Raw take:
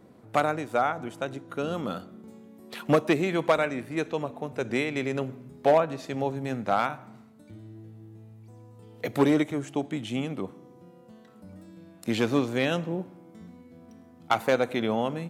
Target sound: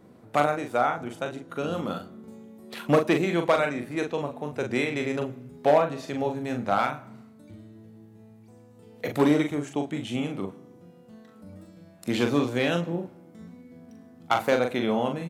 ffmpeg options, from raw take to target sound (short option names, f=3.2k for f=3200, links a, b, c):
-filter_complex "[0:a]asplit=2[a][b];[b]adelay=41,volume=-5.5dB[c];[a][c]amix=inputs=2:normalize=0"